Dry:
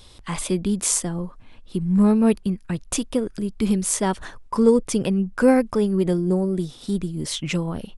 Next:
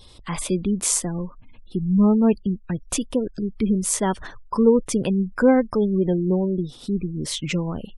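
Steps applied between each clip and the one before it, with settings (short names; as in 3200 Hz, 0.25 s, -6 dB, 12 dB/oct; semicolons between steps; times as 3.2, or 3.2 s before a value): spectral gate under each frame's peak -30 dB strong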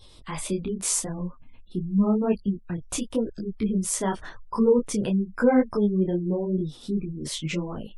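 detuned doubles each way 31 cents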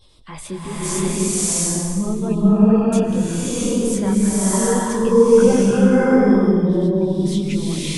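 bloom reverb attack 0.7 s, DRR -10.5 dB; gain -2 dB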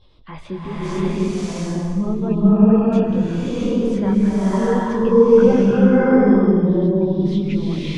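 air absorption 250 m; gain +1 dB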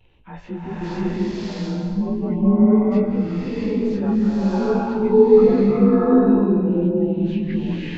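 inharmonic rescaling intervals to 90%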